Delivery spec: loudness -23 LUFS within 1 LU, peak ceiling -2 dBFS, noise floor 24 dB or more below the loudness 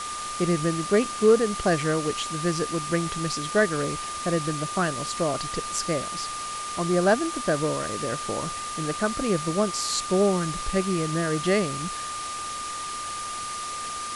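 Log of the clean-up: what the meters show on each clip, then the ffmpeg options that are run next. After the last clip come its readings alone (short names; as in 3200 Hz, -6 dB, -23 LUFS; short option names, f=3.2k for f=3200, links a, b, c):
steady tone 1200 Hz; tone level -32 dBFS; noise floor -33 dBFS; noise floor target -50 dBFS; loudness -26.0 LUFS; peak -7.5 dBFS; loudness target -23.0 LUFS
-> -af "bandreject=f=1.2k:w=30"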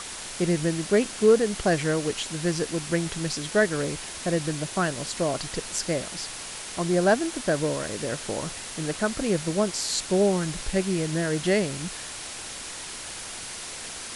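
steady tone none; noise floor -38 dBFS; noise floor target -51 dBFS
-> -af "afftdn=nr=13:nf=-38"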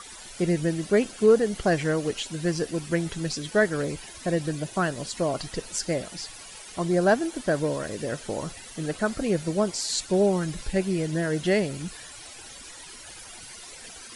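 noise floor -44 dBFS; noise floor target -51 dBFS
-> -af "afftdn=nr=7:nf=-44"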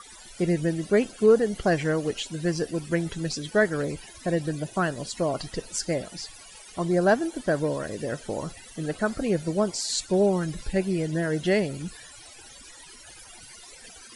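noise floor -47 dBFS; noise floor target -51 dBFS
-> -af "afftdn=nr=6:nf=-47"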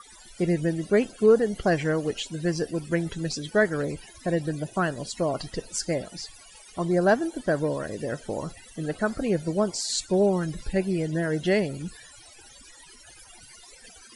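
noise floor -50 dBFS; noise floor target -51 dBFS; loudness -26.5 LUFS; peak -8.0 dBFS; loudness target -23.0 LUFS
-> -af "volume=3.5dB"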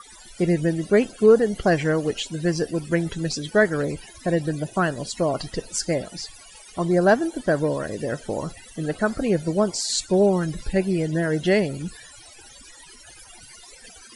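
loudness -23.0 LUFS; peak -4.5 dBFS; noise floor -47 dBFS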